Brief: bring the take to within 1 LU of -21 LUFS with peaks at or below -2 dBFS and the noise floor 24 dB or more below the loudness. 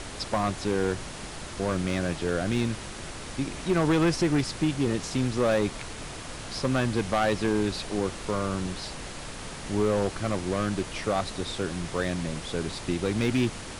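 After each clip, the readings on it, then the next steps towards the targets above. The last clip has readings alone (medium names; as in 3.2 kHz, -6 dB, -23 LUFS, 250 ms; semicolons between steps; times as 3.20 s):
clipped samples 1.4%; clipping level -18.0 dBFS; noise floor -39 dBFS; noise floor target -53 dBFS; loudness -28.5 LUFS; peak level -18.0 dBFS; loudness target -21.0 LUFS
-> clip repair -18 dBFS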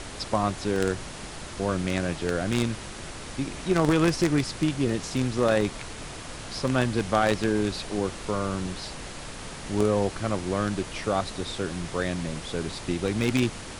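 clipped samples 0.0%; noise floor -39 dBFS; noise floor target -51 dBFS
-> noise print and reduce 12 dB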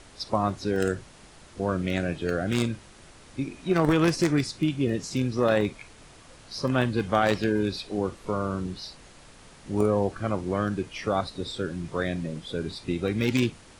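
noise floor -51 dBFS; noise floor target -52 dBFS
-> noise print and reduce 6 dB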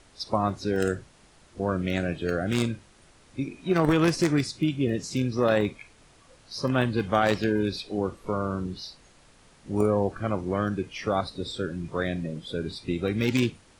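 noise floor -57 dBFS; loudness -27.5 LUFS; peak level -9.0 dBFS; loudness target -21.0 LUFS
-> trim +6.5 dB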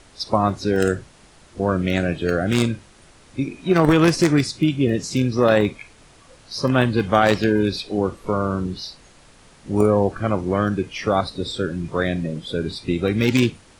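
loudness -21.0 LUFS; peak level -2.5 dBFS; noise floor -50 dBFS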